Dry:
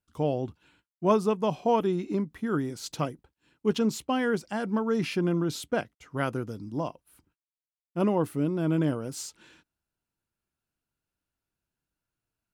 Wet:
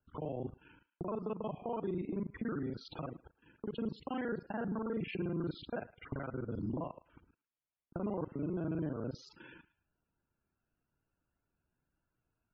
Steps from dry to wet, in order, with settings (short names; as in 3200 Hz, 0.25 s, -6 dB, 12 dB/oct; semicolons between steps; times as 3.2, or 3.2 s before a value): local time reversal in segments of 36 ms; compressor 10:1, threshold -37 dBFS, peak gain reduction 19.5 dB; limiter -33.5 dBFS, peak gain reduction 10 dB; air absorption 270 m; thinning echo 0.109 s, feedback 27%, high-pass 820 Hz, level -17 dB; loudest bins only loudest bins 64; gain +5.5 dB